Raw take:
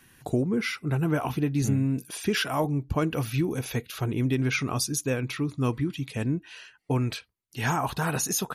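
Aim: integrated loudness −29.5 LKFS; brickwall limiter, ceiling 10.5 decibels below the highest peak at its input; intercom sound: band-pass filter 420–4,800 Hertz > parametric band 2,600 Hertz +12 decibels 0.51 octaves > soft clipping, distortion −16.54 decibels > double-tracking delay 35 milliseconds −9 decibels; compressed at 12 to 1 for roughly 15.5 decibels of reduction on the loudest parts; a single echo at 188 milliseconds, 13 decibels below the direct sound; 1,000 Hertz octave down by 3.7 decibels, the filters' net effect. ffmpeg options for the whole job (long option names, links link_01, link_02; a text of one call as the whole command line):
ffmpeg -i in.wav -filter_complex "[0:a]equalizer=frequency=1000:width_type=o:gain=-5,acompressor=threshold=-37dB:ratio=12,alimiter=level_in=10.5dB:limit=-24dB:level=0:latency=1,volume=-10.5dB,highpass=420,lowpass=4800,equalizer=frequency=2600:width_type=o:width=0.51:gain=12,aecho=1:1:188:0.224,asoftclip=threshold=-34dB,asplit=2[link_01][link_02];[link_02]adelay=35,volume=-9dB[link_03];[link_01][link_03]amix=inputs=2:normalize=0,volume=15dB" out.wav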